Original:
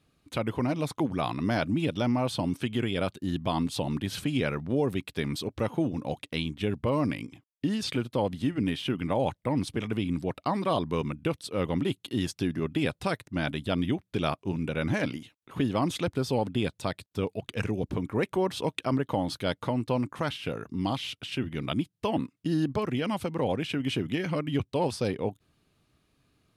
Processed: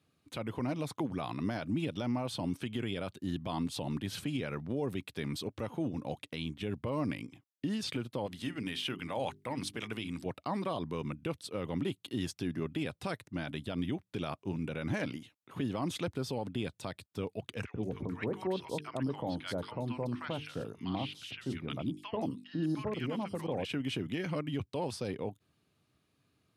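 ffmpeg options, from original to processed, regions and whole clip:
-filter_complex "[0:a]asettb=1/sr,asplit=3[a][b][c];[a]atrim=end=8.264[d];[b]atrim=start=8.26:end=10.26,asetpts=PTS-STARTPTS,afade=t=in:d=0.004:c=qsin,afade=t=out:st=1.996:d=0.004:c=qsin,tiltshelf=f=770:g=-5.5,bandreject=f=50:t=h:w=6,bandreject=f=100:t=h:w=6,bandreject=f=150:t=h:w=6,bandreject=f=200:t=h:w=6,bandreject=f=250:t=h:w=6,bandreject=f=300:t=h:w=6,bandreject=f=350:t=h:w=6,bandreject=f=400:t=h:w=6[e];[c]atrim=start=10.256[f];[d][e]acrossfade=d=0.004:c1=hsin:c2=qsin[g];[g][f]acrossfade=d=0.004:c1=qsin:c2=hsin,asettb=1/sr,asplit=3[h][i][j];[h]atrim=end=17.654[k];[i]atrim=start=17.65:end=23.65,asetpts=PTS-STARTPTS,afade=t=in:d=0.004:c=qsin,afade=t=out:st=5.996:d=0.004:c=qsin,highshelf=f=8.9k:g=-4.5,bandreject=f=50:t=h:w=6,bandreject=f=100:t=h:w=6,bandreject=f=150:t=h:w=6,bandreject=f=200:t=h:w=6,bandreject=f=250:t=h:w=6,bandreject=f=300:t=h:w=6,bandreject=f=350:t=h:w=6,bandreject=f=400:t=h:w=6,bandreject=f=450:t=h:w=6,acrossover=split=1100|4300[l][m][n];[l]adelay=90[o];[n]adelay=180[p];[o][m][p]amix=inputs=3:normalize=0,atrim=end_sample=264600[q];[j]atrim=start=23.646[r];[k][q]acrossfade=d=0.004:c1=hsin:c2=qsin[s];[s][r]acrossfade=d=0.004:c1=qsin:c2=hsin,highpass=f=72:w=0.5412,highpass=f=72:w=1.3066,alimiter=limit=-19.5dB:level=0:latency=1:release=53,volume=-5dB"

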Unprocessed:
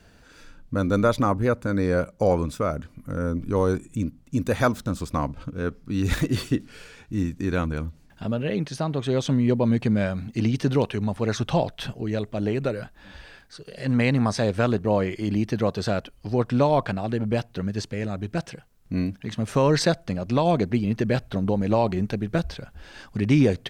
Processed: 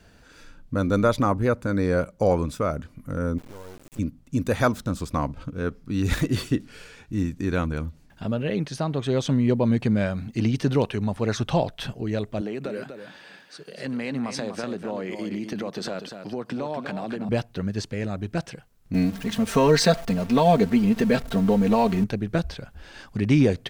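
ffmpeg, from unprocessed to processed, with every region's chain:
-filter_complex "[0:a]asettb=1/sr,asplit=3[a][b][c];[a]atrim=end=3.384[d];[b]atrim=start=3.38:end=3.99,asetpts=PTS-STARTPTS,afade=t=in:d=0.004:c=qsin,afade=t=out:st=0.606:d=0.004:c=qsin,acompressor=threshold=-38dB:ratio=4:attack=3.2:release=140:knee=1:detection=peak,acrusher=bits=5:dc=4:mix=0:aa=0.000001[e];[c]atrim=start=3.986[f];[d][e]acrossfade=d=0.004:c1=hsin:c2=qsin[g];[g][f]acrossfade=d=0.004:c1=qsin:c2=hsin,asettb=1/sr,asplit=3[h][i][j];[h]atrim=end=12.414[k];[i]atrim=start=12.41:end=17.29,asetpts=PTS-STARTPTS,afade=t=in:d=0.004:c=qsin,afade=t=out:st=4.876:d=0.004:c=qsin,highpass=f=160:w=0.5412,highpass=f=160:w=1.3066,acompressor=threshold=-26dB:ratio=6:attack=3.2:release=140:knee=1:detection=peak,aecho=1:1:245:0.398,atrim=end_sample=215208[l];[j]atrim=start=17.286[m];[k][l]acrossfade=d=0.004:c1=hsin:c2=qsin[n];[n][m]acrossfade=d=0.004:c1=qsin:c2=hsin,asettb=1/sr,asplit=3[o][p][q];[o]atrim=end=18.944[r];[p]atrim=start=18.94:end=22.04,asetpts=PTS-STARTPTS,afade=t=in:d=0.004:c=qsin,afade=t=out:st=3.096:d=0.004:c=qsin,aeval=exprs='val(0)+0.5*0.0178*sgn(val(0))':c=same,acrusher=bits=8:mix=0:aa=0.5,aecho=1:1:4.4:0.79,atrim=end_sample=136710[s];[q]atrim=start=22.036[t];[r][s]acrossfade=d=0.004:c1=hsin:c2=qsin[u];[u][t]acrossfade=d=0.004:c1=qsin:c2=hsin"

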